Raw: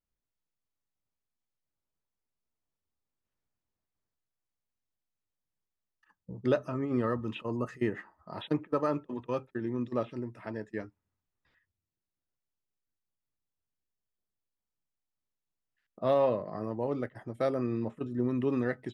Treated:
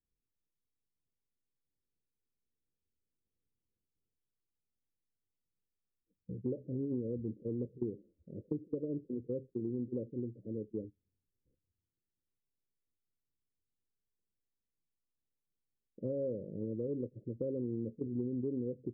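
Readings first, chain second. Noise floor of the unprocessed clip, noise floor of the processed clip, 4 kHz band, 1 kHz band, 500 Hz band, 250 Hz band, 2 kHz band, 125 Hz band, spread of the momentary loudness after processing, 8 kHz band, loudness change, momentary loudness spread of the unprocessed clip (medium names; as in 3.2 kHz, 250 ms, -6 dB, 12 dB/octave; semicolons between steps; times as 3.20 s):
under -85 dBFS, under -85 dBFS, under -30 dB, under -35 dB, -8.0 dB, -4.5 dB, under -40 dB, -4.0 dB, 7 LU, no reading, -6.5 dB, 11 LU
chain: steep low-pass 530 Hz 96 dB/octave; compression, threshold -33 dBFS, peak gain reduction 10 dB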